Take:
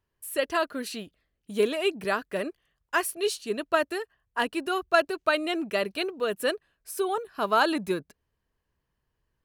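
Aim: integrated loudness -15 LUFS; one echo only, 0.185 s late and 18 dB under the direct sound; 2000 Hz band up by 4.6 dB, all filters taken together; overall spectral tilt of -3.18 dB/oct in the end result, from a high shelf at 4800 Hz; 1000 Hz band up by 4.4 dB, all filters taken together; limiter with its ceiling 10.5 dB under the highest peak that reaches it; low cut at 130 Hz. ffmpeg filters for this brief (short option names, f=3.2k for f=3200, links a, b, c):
-af "highpass=130,equalizer=f=1k:t=o:g=4.5,equalizer=f=2k:t=o:g=5,highshelf=f=4.8k:g=-4.5,alimiter=limit=-14.5dB:level=0:latency=1,aecho=1:1:185:0.126,volume=13.5dB"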